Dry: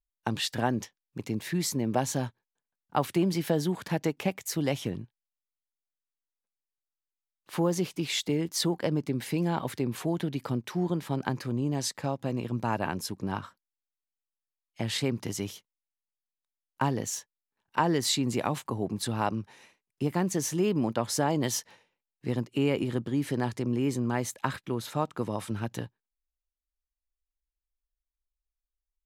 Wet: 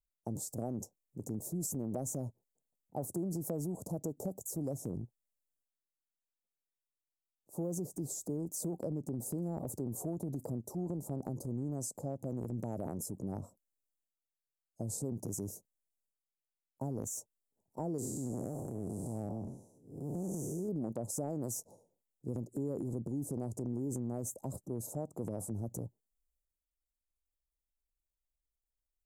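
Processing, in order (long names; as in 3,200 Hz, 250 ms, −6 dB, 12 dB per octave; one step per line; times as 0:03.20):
0:17.98–0:20.69: spectrum smeared in time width 239 ms
elliptic band-stop filter 660–7,300 Hz, stop band 60 dB
transient designer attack −3 dB, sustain +7 dB
downward compressor 4 to 1, threshold −31 dBFS, peak gain reduction 8 dB
level −3 dB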